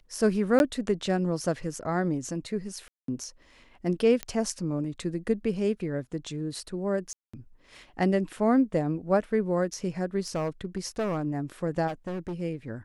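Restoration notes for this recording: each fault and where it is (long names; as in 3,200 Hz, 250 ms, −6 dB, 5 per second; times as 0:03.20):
0:00.59–0:00.60: drop-out 11 ms
0:02.88–0:03.08: drop-out 203 ms
0:04.23: click −15 dBFS
0:07.13–0:07.33: drop-out 205 ms
0:10.28–0:11.25: clipping −24.5 dBFS
0:11.87–0:12.42: clipping −29.5 dBFS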